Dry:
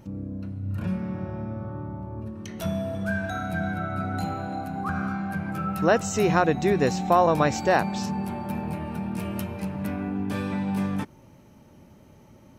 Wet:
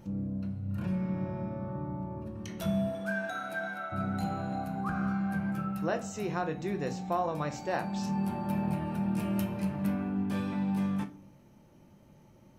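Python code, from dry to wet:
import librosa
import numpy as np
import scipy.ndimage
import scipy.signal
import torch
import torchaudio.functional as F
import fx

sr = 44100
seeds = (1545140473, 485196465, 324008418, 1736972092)

y = fx.highpass(x, sr, hz=fx.line((2.87, 250.0), (3.91, 680.0)), slope=12, at=(2.87, 3.91), fade=0.02)
y = fx.rider(y, sr, range_db=5, speed_s=0.5)
y = fx.room_shoebox(y, sr, seeds[0], volume_m3=290.0, walls='furnished', distance_m=0.82)
y = y * librosa.db_to_amplitude(-8.5)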